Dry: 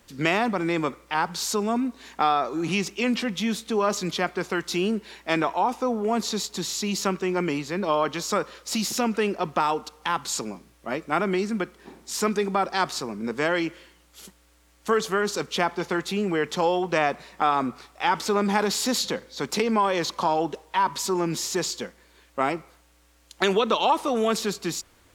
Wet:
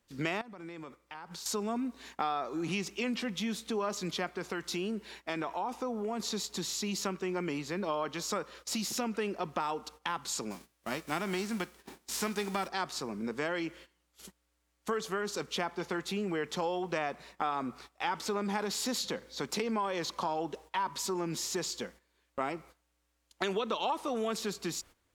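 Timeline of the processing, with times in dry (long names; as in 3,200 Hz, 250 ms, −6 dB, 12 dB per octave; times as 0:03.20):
0:00.41–0:01.46: downward compressor 16 to 1, threshold −36 dBFS
0:04.35–0:06.20: downward compressor 1.5 to 1, threshold −28 dBFS
0:10.50–0:12.67: spectral envelope flattened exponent 0.6
whole clip: noise gate −45 dBFS, range −14 dB; downward compressor 2 to 1, threshold −30 dBFS; level −4 dB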